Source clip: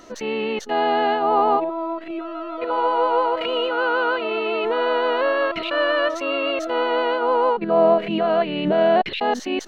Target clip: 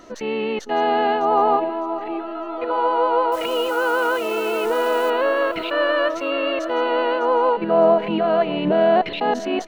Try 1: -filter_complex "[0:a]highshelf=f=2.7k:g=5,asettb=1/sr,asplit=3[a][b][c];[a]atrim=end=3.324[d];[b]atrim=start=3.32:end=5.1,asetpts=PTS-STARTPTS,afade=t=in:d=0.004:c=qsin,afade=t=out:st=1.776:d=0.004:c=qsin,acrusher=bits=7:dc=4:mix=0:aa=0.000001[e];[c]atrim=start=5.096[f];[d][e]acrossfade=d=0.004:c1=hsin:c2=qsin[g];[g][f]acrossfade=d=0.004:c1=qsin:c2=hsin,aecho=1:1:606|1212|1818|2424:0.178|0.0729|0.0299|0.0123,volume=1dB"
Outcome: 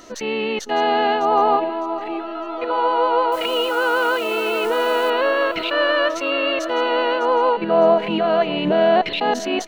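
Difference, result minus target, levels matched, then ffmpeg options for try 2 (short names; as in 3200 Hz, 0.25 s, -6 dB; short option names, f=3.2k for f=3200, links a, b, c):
4000 Hz band +4.5 dB
-filter_complex "[0:a]highshelf=f=2.7k:g=-4.5,asettb=1/sr,asplit=3[a][b][c];[a]atrim=end=3.324[d];[b]atrim=start=3.32:end=5.1,asetpts=PTS-STARTPTS,afade=t=in:d=0.004:c=qsin,afade=t=out:st=1.776:d=0.004:c=qsin,acrusher=bits=7:dc=4:mix=0:aa=0.000001[e];[c]atrim=start=5.096[f];[d][e]acrossfade=d=0.004:c1=hsin:c2=qsin[g];[g][f]acrossfade=d=0.004:c1=qsin:c2=hsin,aecho=1:1:606|1212|1818|2424:0.178|0.0729|0.0299|0.0123,volume=1dB"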